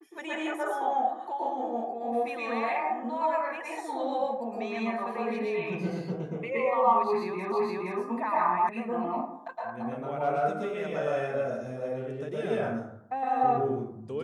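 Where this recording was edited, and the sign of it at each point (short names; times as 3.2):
7.52 repeat of the last 0.47 s
8.69 sound cut off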